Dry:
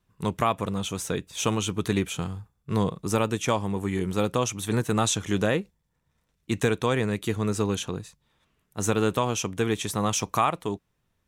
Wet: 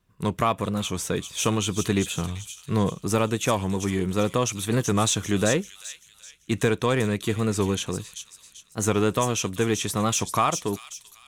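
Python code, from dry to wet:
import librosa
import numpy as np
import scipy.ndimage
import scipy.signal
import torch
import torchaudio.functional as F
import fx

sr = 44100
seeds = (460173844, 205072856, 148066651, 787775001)

p1 = np.clip(x, -10.0 ** (-23.5 / 20.0), 10.0 ** (-23.5 / 20.0))
p2 = x + F.gain(torch.from_numpy(p1), -9.5).numpy()
p3 = fx.notch(p2, sr, hz=840.0, q=12.0)
p4 = fx.echo_wet_highpass(p3, sr, ms=389, feedback_pct=39, hz=4000.0, wet_db=-4)
y = fx.record_warp(p4, sr, rpm=45.0, depth_cents=100.0)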